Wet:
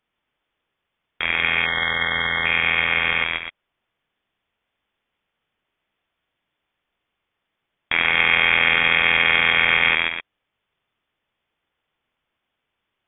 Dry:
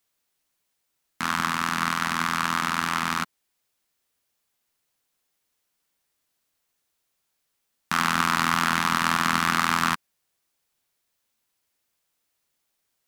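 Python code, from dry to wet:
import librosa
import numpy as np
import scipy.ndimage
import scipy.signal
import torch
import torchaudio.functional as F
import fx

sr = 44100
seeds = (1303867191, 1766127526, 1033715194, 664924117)

y = fx.echo_multitap(x, sr, ms=(135, 255), db=(-5.5, -9.0))
y = fx.spec_erase(y, sr, start_s=1.65, length_s=0.81, low_hz=390.0, high_hz=1300.0)
y = fx.freq_invert(y, sr, carrier_hz=3500)
y = F.gain(torch.from_numpy(y), 4.0).numpy()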